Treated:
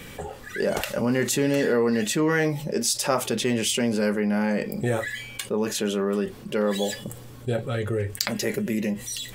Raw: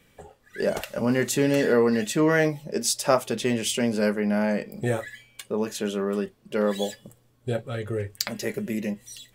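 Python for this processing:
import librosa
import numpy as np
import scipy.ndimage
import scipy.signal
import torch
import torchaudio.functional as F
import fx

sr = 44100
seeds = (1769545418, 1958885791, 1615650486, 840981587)

y = fx.notch(x, sr, hz=640.0, q=13.0)
y = fx.env_flatten(y, sr, amount_pct=50)
y = y * 10.0 ** (-2.5 / 20.0)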